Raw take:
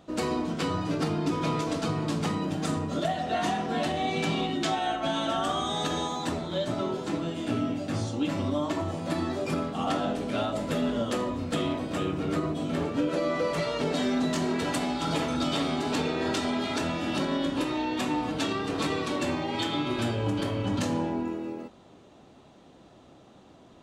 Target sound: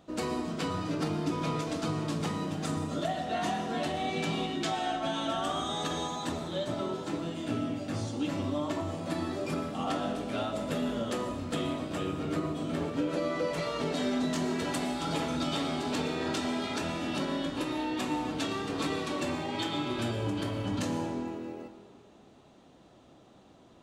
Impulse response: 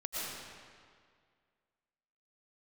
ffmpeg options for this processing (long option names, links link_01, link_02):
-filter_complex "[0:a]asplit=2[link_01][link_02];[1:a]atrim=start_sample=2205,highshelf=frequency=5400:gain=10[link_03];[link_02][link_03]afir=irnorm=-1:irlink=0,volume=-13.5dB[link_04];[link_01][link_04]amix=inputs=2:normalize=0,volume=-5dB"